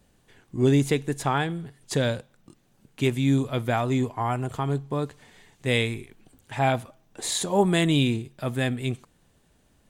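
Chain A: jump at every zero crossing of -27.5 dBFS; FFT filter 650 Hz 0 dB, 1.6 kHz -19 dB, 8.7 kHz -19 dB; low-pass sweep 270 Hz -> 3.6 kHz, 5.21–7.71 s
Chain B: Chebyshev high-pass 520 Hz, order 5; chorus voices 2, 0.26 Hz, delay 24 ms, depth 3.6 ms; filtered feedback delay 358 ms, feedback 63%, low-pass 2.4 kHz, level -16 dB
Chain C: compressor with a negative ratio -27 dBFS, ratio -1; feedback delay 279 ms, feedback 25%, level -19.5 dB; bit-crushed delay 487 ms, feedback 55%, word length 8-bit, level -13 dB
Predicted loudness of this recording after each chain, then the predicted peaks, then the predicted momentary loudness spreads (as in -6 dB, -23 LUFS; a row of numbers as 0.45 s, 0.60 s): -21.5 LUFS, -34.0 LUFS, -29.0 LUFS; -6.0 dBFS, -14.0 dBFS, -12.5 dBFS; 20 LU, 19 LU, 13 LU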